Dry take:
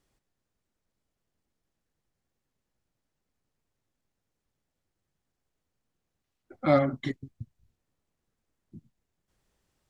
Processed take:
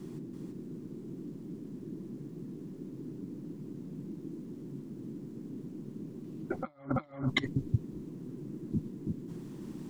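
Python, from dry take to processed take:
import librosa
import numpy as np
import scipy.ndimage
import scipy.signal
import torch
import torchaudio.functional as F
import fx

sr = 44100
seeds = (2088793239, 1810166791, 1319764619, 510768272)

p1 = fx.peak_eq(x, sr, hz=1000.0, db=7.5, octaves=0.47)
p2 = p1 + fx.echo_single(p1, sr, ms=333, db=-3.0, dry=0)
p3 = fx.dmg_noise_band(p2, sr, seeds[0], low_hz=130.0, high_hz=350.0, level_db=-58.0)
p4 = fx.over_compress(p3, sr, threshold_db=-38.0, ratio=-0.5)
y = F.gain(torch.from_numpy(p4), 5.5).numpy()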